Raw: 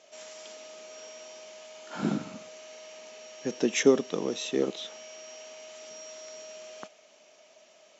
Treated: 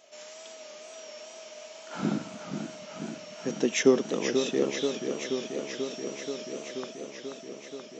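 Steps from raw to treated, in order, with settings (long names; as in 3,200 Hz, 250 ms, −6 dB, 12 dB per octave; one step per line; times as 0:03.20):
tape wow and flutter 50 cents
feedback echo with a swinging delay time 483 ms, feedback 78%, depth 124 cents, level −7 dB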